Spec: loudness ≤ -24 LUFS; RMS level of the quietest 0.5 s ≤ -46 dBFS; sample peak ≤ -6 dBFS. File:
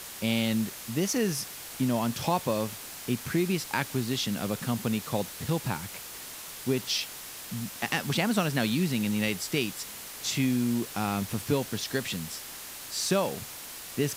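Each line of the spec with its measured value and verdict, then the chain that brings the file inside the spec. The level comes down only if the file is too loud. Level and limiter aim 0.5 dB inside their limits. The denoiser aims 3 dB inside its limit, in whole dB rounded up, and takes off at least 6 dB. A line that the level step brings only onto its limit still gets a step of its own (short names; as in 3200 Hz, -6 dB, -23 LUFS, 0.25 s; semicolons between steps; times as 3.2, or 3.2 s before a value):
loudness -30.0 LUFS: OK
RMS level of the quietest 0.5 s -42 dBFS: fail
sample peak -11.0 dBFS: OK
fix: denoiser 7 dB, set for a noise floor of -42 dBFS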